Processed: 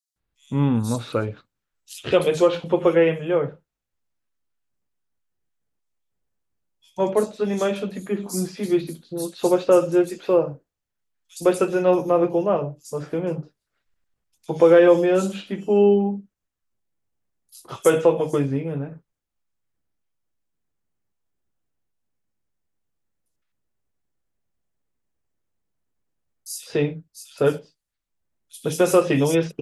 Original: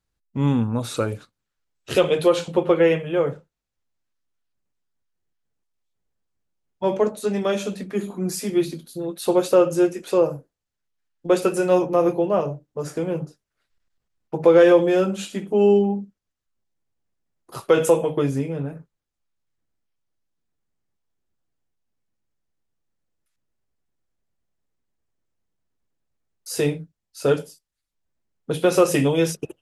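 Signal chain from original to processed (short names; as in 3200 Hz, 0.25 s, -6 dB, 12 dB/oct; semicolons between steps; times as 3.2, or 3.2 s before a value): bands offset in time highs, lows 0.16 s, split 4300 Hz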